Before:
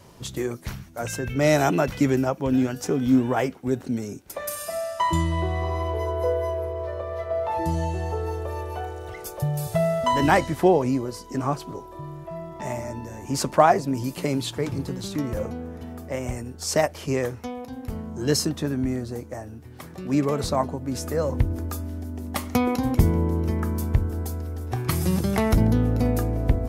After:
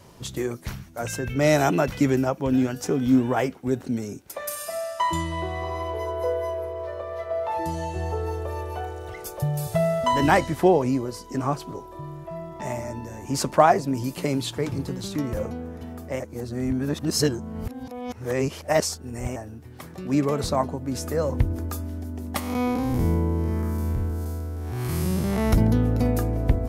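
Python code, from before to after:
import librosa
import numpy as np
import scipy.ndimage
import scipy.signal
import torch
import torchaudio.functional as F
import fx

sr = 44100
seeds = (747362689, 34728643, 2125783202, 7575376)

y = fx.low_shelf(x, sr, hz=260.0, db=-8.0, at=(4.27, 7.96))
y = fx.spec_blur(y, sr, span_ms=193.0, at=(22.39, 25.51), fade=0.02)
y = fx.edit(y, sr, fx.reverse_span(start_s=16.2, length_s=3.16), tone=tone)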